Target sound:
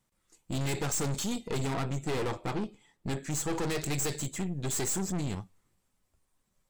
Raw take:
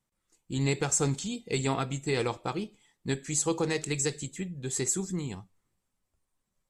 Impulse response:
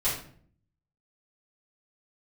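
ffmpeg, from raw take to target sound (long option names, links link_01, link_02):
-filter_complex "[0:a]asettb=1/sr,asplit=3[link_01][link_02][link_03];[link_01]atrim=end=1.484[link_04];[link_02]atrim=start=1.48:end=3.53,asetpts=PTS-STARTPTS,afade=type=in:duration=0.004:curve=qsin,afade=type=out:start_time=2.046:duration=0.004:curve=qsin,highshelf=frequency=2400:gain=-8[link_05];[link_03]atrim=start=3.526[link_06];[link_04][link_05]acrossfade=duration=0.004:curve1=hsin:curve2=qsin[link_07];[link_07][link_06]acrossfade=duration=0.004:curve1=qsin:curve2=hsin,aeval=exprs='(tanh(79.4*val(0)+0.65)-tanh(0.65))/79.4':channel_layout=same,volume=8.5dB"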